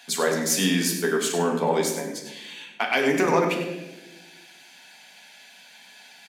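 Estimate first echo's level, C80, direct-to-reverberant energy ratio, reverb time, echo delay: −10.5 dB, 6.5 dB, 0.5 dB, 1.1 s, 98 ms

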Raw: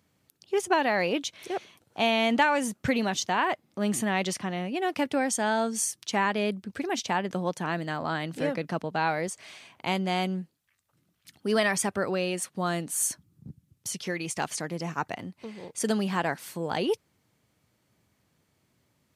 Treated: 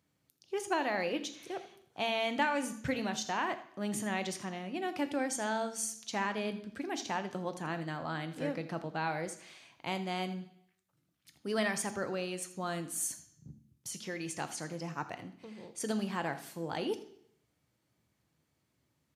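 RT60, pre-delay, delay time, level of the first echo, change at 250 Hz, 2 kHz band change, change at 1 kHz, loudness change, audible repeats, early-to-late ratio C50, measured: 0.70 s, 3 ms, 82 ms, −16.0 dB, −7.5 dB, −7.5 dB, −7.5 dB, −7.5 dB, 1, 12.5 dB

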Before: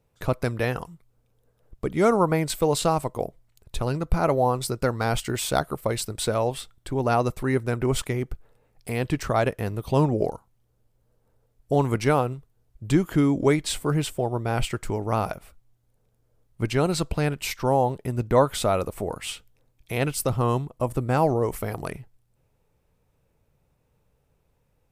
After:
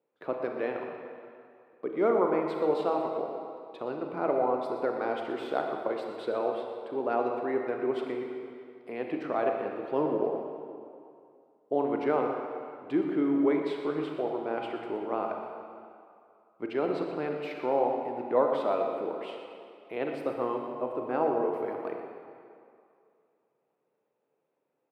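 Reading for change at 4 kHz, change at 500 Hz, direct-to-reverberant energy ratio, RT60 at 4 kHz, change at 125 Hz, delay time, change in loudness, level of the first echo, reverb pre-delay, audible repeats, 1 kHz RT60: −15.5 dB, −3.0 dB, 2.0 dB, 1.8 s, −23.0 dB, 121 ms, −5.5 dB, −11.5 dB, 29 ms, 1, 2.5 s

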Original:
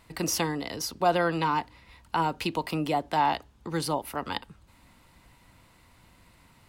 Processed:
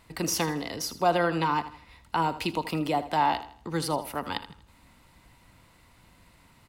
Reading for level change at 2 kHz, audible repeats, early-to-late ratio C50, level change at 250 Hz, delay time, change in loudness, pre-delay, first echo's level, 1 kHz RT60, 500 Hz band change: 0.0 dB, 3, no reverb audible, +0.5 dB, 80 ms, +0.5 dB, no reverb audible, −14.0 dB, no reverb audible, 0.0 dB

